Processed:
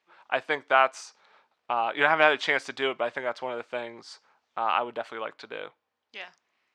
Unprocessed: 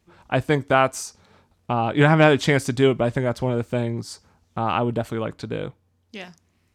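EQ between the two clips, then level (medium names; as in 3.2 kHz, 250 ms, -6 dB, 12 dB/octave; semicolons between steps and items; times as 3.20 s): band-pass 770–3600 Hz; 0.0 dB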